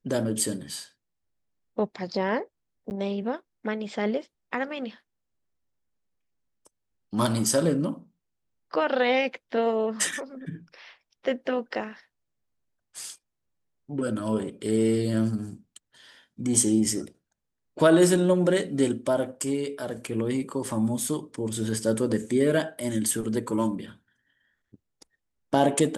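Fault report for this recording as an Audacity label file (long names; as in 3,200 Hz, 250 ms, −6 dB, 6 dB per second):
2.900000	2.910000	drop-out 9.7 ms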